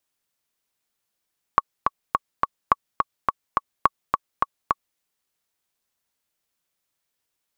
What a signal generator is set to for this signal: metronome 211 bpm, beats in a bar 4, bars 3, 1.12 kHz, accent 4 dB -1.5 dBFS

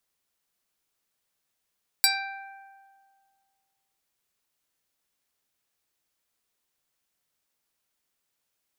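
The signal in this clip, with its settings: plucked string G5, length 1.96 s, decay 1.98 s, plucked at 0.25, medium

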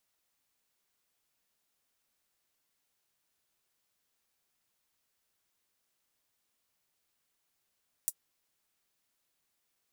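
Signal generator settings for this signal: closed hi-hat, high-pass 8.2 kHz, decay 0.06 s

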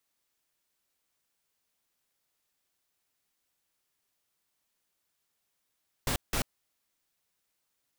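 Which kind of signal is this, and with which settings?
noise bursts pink, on 0.09 s, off 0.17 s, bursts 2, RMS -29 dBFS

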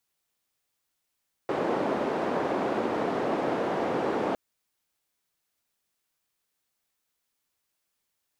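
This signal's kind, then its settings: noise band 290–550 Hz, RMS -28 dBFS 2.86 s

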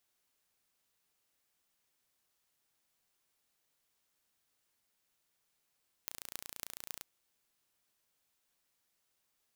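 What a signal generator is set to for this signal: pulse train 29 per s, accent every 8, -11 dBFS 0.95 s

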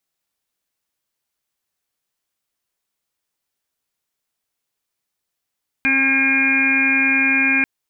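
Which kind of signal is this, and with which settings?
steady additive tone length 1.79 s, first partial 269 Hz, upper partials -19.5/-13/-14.5/-19/1/-15.5/-1/5.5 dB, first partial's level -21.5 dB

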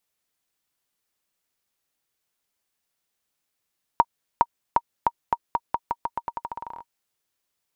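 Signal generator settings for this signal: bouncing ball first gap 0.41 s, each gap 0.86, 940 Hz, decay 48 ms -4 dBFS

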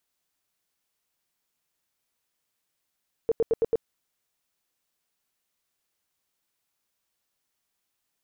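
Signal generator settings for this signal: tone bursts 456 Hz, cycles 12, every 0.11 s, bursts 5, -18.5 dBFS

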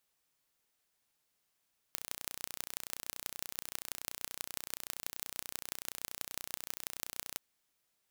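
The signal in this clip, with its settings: pulse train 30.5 per s, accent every 5, -8.5 dBFS 5.44 s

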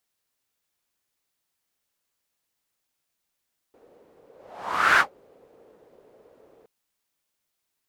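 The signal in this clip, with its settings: whoosh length 2.92 s, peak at 1.25 s, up 0.74 s, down 0.12 s, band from 470 Hz, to 1.5 kHz, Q 3.9, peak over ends 38 dB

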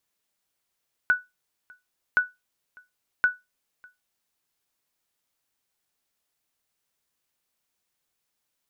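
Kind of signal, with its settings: sonar ping 1.48 kHz, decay 0.20 s, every 1.07 s, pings 3, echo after 0.60 s, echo -29 dB -12 dBFS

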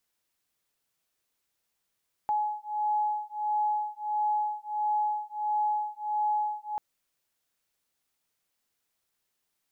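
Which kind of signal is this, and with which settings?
beating tones 843 Hz, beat 1.5 Hz, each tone -29.5 dBFS 4.49 s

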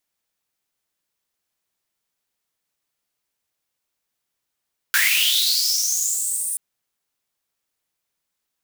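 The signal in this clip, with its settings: swept filtered noise white, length 1.63 s highpass, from 1.5 kHz, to 9.4 kHz, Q 8.7, linear, gain ramp -12.5 dB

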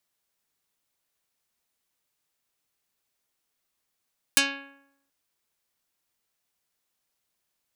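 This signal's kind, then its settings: plucked string C#4, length 0.73 s, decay 0.79 s, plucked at 0.42, dark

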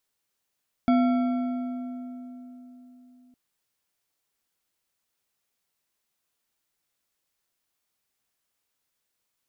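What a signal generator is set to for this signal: metal hit bar, length 2.46 s, lowest mode 250 Hz, modes 6, decay 3.96 s, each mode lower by 7 dB, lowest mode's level -17 dB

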